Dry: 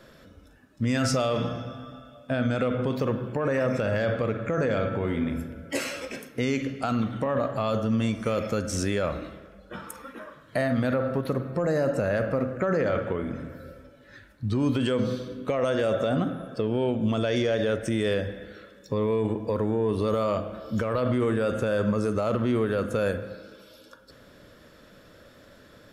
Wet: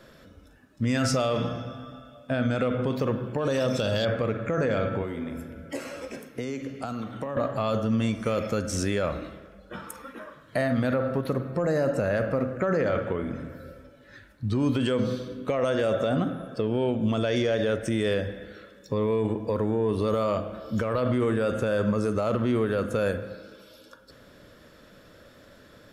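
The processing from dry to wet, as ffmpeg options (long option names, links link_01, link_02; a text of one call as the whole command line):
ffmpeg -i in.wav -filter_complex "[0:a]asettb=1/sr,asplit=3[link_01][link_02][link_03];[link_01]atrim=end=3.384[link_04];[link_02]atrim=start=3.38:end=4.05,asetpts=PTS-STARTPTS,afade=type=in:duration=0.004:curve=qsin,afade=type=out:start_time=0.666:duration=0.004:curve=qsin,highshelf=frequency=2700:width_type=q:width=3:gain=8[link_05];[link_03]atrim=start=4.046[link_06];[link_04][link_05]acrossfade=duration=0.004:curve1=hsin:curve2=qsin[link_07];[link_07][link_06]acrossfade=duration=0.004:curve1=qsin:curve2=hsin,asettb=1/sr,asplit=3[link_08][link_09][link_10];[link_08]atrim=end=5.024[link_11];[link_09]atrim=start=5.02:end=7.37,asetpts=PTS-STARTPTS,afade=type=in:duration=0.004:curve=qsin,afade=type=out:start_time=2.346:duration=0.004:curve=qsin,acrossover=split=330|1500|4800[link_12][link_13][link_14][link_15];[link_12]acompressor=threshold=-38dB:ratio=3[link_16];[link_13]acompressor=threshold=-34dB:ratio=3[link_17];[link_14]acompressor=threshold=-52dB:ratio=3[link_18];[link_15]acompressor=threshold=-51dB:ratio=3[link_19];[link_16][link_17][link_18][link_19]amix=inputs=4:normalize=0[link_20];[link_10]atrim=start=7.366[link_21];[link_11][link_20]acrossfade=duration=0.004:curve1=hsin:curve2=qsin[link_22];[link_22][link_21]acrossfade=duration=0.004:curve1=qsin:curve2=hsin" out.wav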